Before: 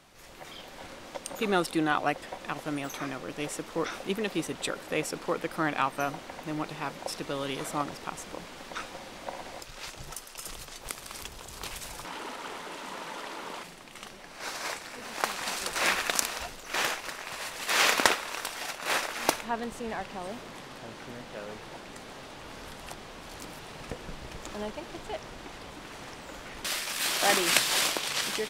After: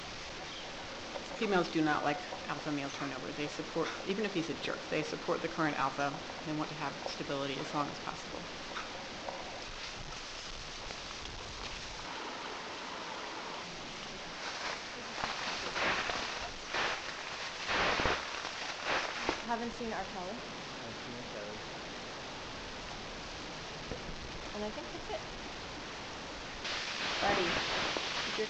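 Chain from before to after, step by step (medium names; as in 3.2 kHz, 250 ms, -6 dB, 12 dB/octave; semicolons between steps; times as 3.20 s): one-bit delta coder 32 kbps, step -34 dBFS; de-hum 66.3 Hz, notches 34; trim -3 dB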